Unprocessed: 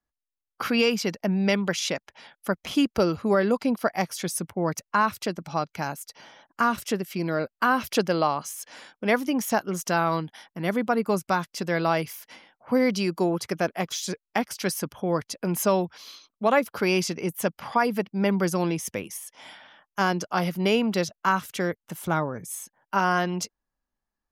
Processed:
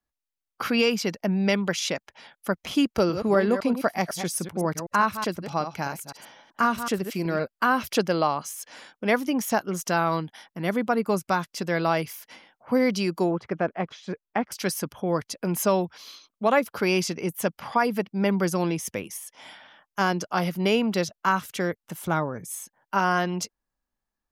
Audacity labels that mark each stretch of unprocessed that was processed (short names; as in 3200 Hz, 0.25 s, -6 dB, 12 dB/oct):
2.850000	7.440000	reverse delay 0.126 s, level -9 dB
13.310000	14.520000	LPF 1900 Hz